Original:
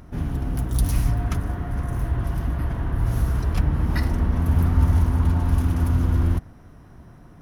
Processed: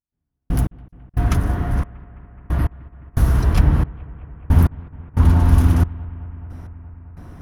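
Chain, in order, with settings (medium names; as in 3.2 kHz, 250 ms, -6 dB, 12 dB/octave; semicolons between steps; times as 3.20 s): trance gate "...x...xxxx." 90 bpm -60 dB; bucket-brigade echo 212 ms, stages 4096, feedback 81%, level -22.5 dB; trim +6.5 dB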